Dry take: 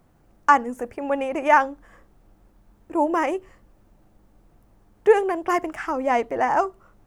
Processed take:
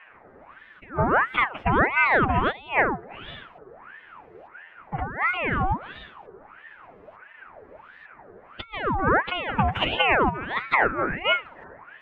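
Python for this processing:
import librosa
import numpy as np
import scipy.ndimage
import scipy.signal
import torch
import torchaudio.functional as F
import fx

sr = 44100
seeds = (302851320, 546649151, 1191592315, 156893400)

y = fx.over_compress(x, sr, threshold_db=-27.0, ratio=-0.5)
y = fx.filter_lfo_lowpass(y, sr, shape='saw_up', hz=1.9, low_hz=920.0, high_hz=2200.0, q=2.2)
y = fx.vibrato(y, sr, rate_hz=12.0, depth_cents=21.0)
y = fx.stretch_vocoder(y, sr, factor=1.7)
y = fx.ring_lfo(y, sr, carrier_hz=1100.0, swing_pct=65, hz=1.5)
y = y * 10.0 ** (5.5 / 20.0)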